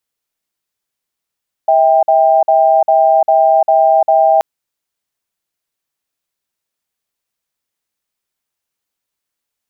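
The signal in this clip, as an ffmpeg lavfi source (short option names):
-f lavfi -i "aevalsrc='0.335*(sin(2*PI*647*t)+sin(2*PI*792*t))*clip(min(mod(t,0.4),0.35-mod(t,0.4))/0.005,0,1)':d=2.73:s=44100"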